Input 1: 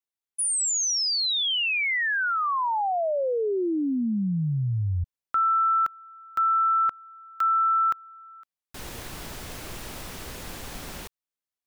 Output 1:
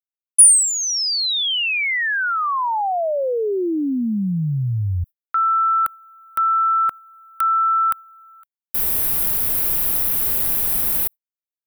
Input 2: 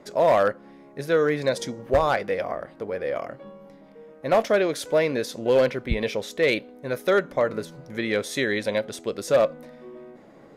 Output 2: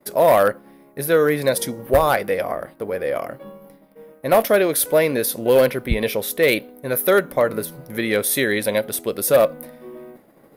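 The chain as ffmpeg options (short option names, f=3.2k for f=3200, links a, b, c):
-af "aexciter=amount=7.8:drive=8.3:freq=9.7k,agate=range=-33dB:threshold=-44dB:ratio=3:release=102:detection=peak,volume=4.5dB"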